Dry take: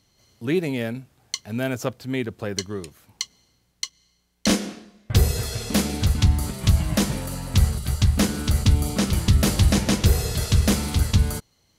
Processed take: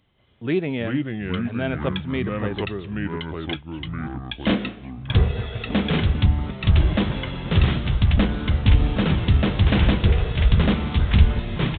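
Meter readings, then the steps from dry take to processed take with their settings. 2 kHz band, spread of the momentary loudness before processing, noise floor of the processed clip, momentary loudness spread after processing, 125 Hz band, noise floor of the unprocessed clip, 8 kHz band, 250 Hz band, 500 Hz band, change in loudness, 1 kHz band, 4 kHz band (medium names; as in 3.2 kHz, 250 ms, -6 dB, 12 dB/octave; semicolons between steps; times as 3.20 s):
+3.0 dB, 13 LU, -40 dBFS, 11 LU, +1.5 dB, -66 dBFS, under -40 dB, +1.5 dB, +1.5 dB, +1.0 dB, +2.5 dB, -1.0 dB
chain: ever faster or slower copies 272 ms, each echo -4 st, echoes 3; resampled via 8 kHz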